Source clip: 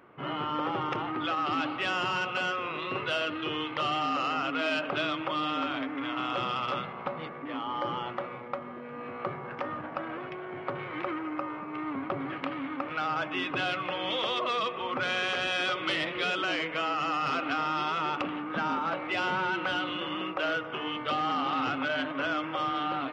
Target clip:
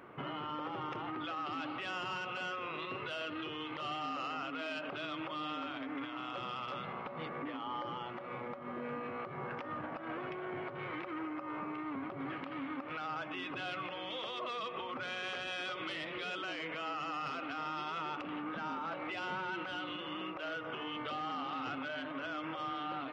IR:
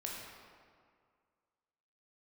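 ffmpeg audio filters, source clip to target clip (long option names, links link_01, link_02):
-af "acompressor=threshold=-33dB:ratio=6,alimiter=level_in=10.5dB:limit=-24dB:level=0:latency=1:release=229,volume=-10.5dB,volume=2.5dB"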